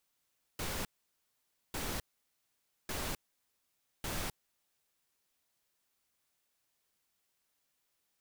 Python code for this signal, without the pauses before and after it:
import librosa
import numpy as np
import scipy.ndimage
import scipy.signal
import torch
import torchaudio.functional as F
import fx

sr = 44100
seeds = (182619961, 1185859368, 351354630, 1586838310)

y = fx.noise_burst(sr, seeds[0], colour='pink', on_s=0.26, off_s=0.89, bursts=4, level_db=-37.5)